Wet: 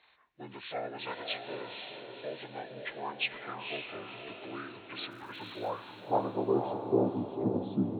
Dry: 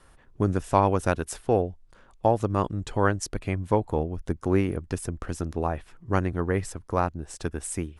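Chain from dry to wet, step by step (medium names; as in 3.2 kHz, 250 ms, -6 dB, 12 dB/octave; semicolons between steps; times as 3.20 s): frequency axis rescaled in octaves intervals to 75%; in parallel at +2 dB: peak limiter -21.5 dBFS, peak gain reduction 11 dB; on the sum: band-pass sweep 2.2 kHz -> 220 Hz, 5.01–7.36 s; 5.10–5.69 s: crackle 460 per s -52 dBFS; echo that smears into a reverb 509 ms, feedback 46%, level -5 dB; on a send at -21.5 dB: reverberation RT60 1.2 s, pre-delay 47 ms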